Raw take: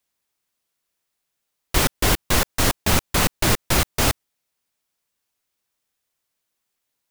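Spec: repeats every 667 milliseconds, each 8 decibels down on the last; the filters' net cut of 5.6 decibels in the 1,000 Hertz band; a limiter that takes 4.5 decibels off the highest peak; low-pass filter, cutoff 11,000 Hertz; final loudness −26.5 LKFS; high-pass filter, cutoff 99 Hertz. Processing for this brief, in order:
high-pass filter 99 Hz
low-pass filter 11,000 Hz
parametric band 1,000 Hz −7.5 dB
brickwall limiter −12.5 dBFS
repeating echo 667 ms, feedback 40%, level −8 dB
level −1.5 dB

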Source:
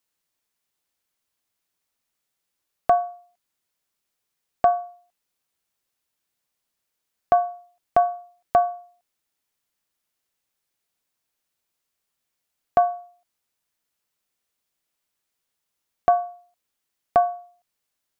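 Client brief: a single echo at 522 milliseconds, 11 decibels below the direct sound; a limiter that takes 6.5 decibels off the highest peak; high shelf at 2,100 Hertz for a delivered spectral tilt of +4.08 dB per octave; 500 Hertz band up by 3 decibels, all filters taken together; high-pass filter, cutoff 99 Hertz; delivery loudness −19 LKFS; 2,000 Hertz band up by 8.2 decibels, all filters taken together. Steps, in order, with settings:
high-pass filter 99 Hz
parametric band 500 Hz +3 dB
parametric band 2,000 Hz +7.5 dB
high-shelf EQ 2,100 Hz +8.5 dB
brickwall limiter −9.5 dBFS
single-tap delay 522 ms −11 dB
level +6.5 dB

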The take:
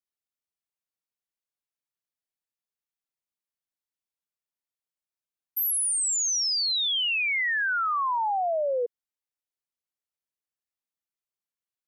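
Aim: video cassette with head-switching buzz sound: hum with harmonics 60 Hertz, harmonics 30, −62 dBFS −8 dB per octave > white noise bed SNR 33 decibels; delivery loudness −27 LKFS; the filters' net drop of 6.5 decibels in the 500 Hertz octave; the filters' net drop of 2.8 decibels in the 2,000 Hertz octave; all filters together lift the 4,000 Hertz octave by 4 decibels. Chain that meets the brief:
parametric band 500 Hz −8 dB
parametric band 2,000 Hz −5 dB
parametric band 4,000 Hz +6.5 dB
hum with harmonics 60 Hz, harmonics 30, −62 dBFS −8 dB per octave
white noise bed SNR 33 dB
level −4 dB

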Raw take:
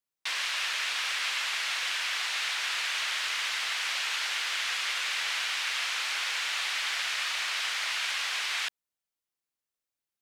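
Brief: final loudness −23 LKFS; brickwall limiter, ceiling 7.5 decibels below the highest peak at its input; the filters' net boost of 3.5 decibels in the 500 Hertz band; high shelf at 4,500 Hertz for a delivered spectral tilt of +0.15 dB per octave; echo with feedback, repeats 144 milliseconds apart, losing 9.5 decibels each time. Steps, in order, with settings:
parametric band 500 Hz +4.5 dB
high-shelf EQ 4,500 Hz +4.5 dB
brickwall limiter −23 dBFS
repeating echo 144 ms, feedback 33%, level −9.5 dB
level +6.5 dB

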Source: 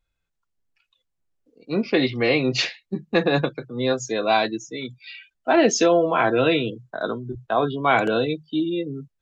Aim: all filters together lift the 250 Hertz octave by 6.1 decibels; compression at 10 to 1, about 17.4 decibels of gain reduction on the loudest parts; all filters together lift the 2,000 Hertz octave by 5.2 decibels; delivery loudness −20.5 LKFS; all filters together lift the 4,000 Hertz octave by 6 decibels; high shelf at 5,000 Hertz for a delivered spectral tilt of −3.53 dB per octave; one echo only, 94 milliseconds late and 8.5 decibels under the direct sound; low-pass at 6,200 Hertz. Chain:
low-pass filter 6,200 Hz
parametric band 250 Hz +8 dB
parametric band 2,000 Hz +5.5 dB
parametric band 4,000 Hz +9 dB
high-shelf EQ 5,000 Hz −7.5 dB
downward compressor 10 to 1, threshold −28 dBFS
single-tap delay 94 ms −8.5 dB
level +11.5 dB

